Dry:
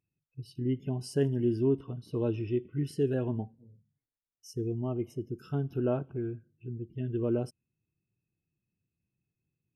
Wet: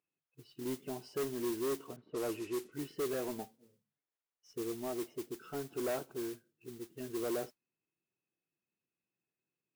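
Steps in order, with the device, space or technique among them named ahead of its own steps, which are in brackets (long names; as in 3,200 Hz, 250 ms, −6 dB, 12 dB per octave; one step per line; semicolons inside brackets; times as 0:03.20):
carbon microphone (band-pass filter 410–2,600 Hz; soft clipping −33 dBFS, distortion −10 dB; noise that follows the level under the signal 12 dB)
0:01.96–0:02.72: low-pass that shuts in the quiet parts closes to 1,500 Hz, open at −36 dBFS
level +2 dB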